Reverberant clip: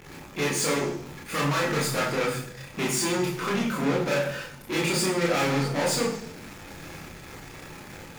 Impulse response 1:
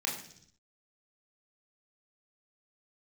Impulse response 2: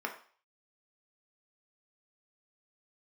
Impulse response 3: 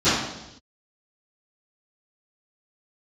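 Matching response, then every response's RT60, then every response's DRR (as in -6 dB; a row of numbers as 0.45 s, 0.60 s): 1; 0.65 s, 0.45 s, 0.85 s; -2.0 dB, 1.5 dB, -21.5 dB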